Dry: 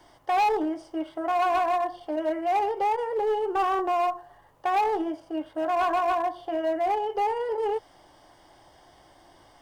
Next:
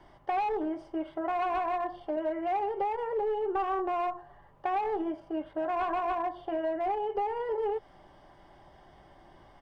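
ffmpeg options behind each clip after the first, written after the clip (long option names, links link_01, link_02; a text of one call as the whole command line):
ffmpeg -i in.wav -af "bass=frequency=250:gain=6,treble=frequency=4000:gain=-15,aecho=1:1:5.1:0.32,acompressor=threshold=-26dB:ratio=6,volume=-1.5dB" out.wav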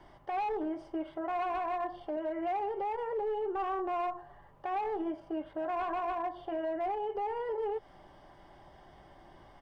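ffmpeg -i in.wav -af "alimiter=level_in=4dB:limit=-24dB:level=0:latency=1:release=159,volume=-4dB" out.wav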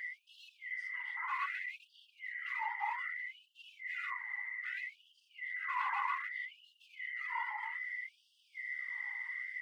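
ffmpeg -i in.wav -af "aeval=exprs='val(0)+0.00891*sin(2*PI*2000*n/s)':channel_layout=same,afftfilt=real='hypot(re,im)*cos(2*PI*random(0))':imag='hypot(re,im)*sin(2*PI*random(1))':win_size=512:overlap=0.75,afftfilt=real='re*gte(b*sr/1024,790*pow(2700/790,0.5+0.5*sin(2*PI*0.63*pts/sr)))':imag='im*gte(b*sr/1024,790*pow(2700/790,0.5+0.5*sin(2*PI*0.63*pts/sr)))':win_size=1024:overlap=0.75,volume=8dB" out.wav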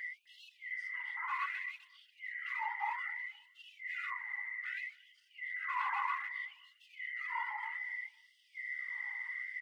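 ffmpeg -i in.wav -af "aecho=1:1:256|512:0.0668|0.018" out.wav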